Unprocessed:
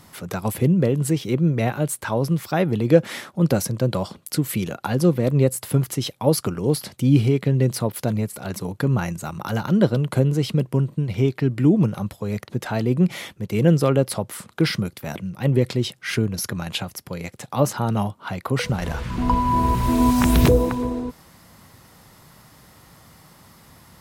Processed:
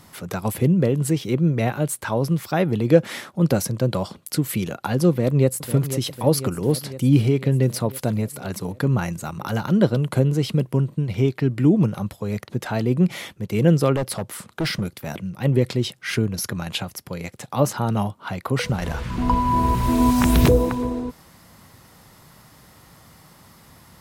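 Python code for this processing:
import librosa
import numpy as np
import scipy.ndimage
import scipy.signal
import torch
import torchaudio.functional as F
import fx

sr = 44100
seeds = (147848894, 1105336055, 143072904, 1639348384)

y = fx.echo_throw(x, sr, start_s=5.1, length_s=0.64, ms=500, feedback_pct=70, wet_db=-11.0)
y = fx.overload_stage(y, sr, gain_db=19.5, at=(13.96, 15.31))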